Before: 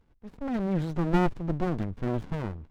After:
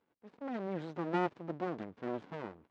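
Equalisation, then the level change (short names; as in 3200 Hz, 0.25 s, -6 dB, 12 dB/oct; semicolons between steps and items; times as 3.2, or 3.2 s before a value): HPF 310 Hz 12 dB/oct; air absorption 120 m; -4.5 dB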